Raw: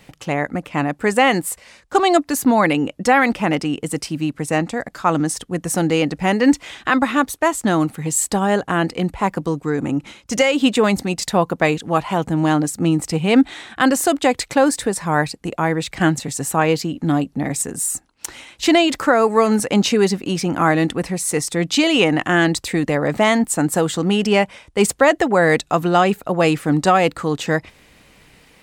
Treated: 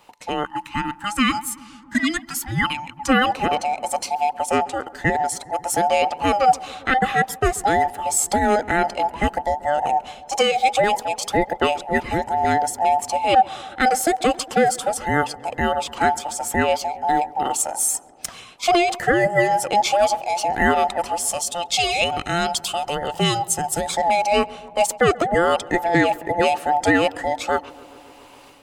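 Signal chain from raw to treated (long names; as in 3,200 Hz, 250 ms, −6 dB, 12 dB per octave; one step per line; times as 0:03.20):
frequency inversion band by band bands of 1,000 Hz
gain on a spectral selection 0:21.33–0:23.89, 210–2,500 Hz −8 dB
automatic gain control gain up to 8.5 dB
feedback echo with a low-pass in the loop 135 ms, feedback 81%, low-pass 1,800 Hz, level −21 dB
gain on a spectral selection 0:00.45–0:03.09, 330–820 Hz −25 dB
level −5 dB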